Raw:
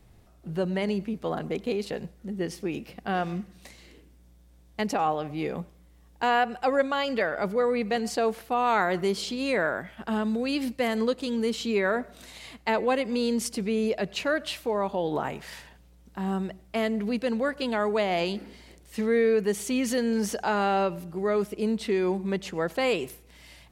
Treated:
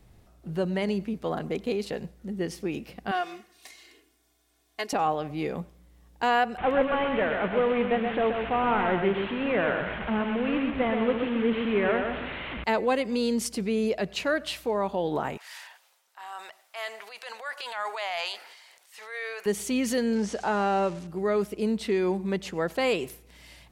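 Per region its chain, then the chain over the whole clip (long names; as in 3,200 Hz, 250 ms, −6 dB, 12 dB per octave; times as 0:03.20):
0:03.11–0:04.93: high-pass filter 960 Hz 6 dB per octave + comb filter 2.8 ms, depth 83%
0:06.58–0:12.64: linear delta modulator 16 kbit/s, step −29.5 dBFS + repeating echo 128 ms, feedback 32%, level −5.5 dB
0:15.37–0:19.46: high-pass filter 780 Hz 24 dB per octave + transient designer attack −7 dB, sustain +7 dB
0:20.15–0:21.07: spike at every zero crossing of −26.5 dBFS + low-pass filter 8,000 Hz 24 dB per octave + high-shelf EQ 3,700 Hz −11 dB
whole clip: no processing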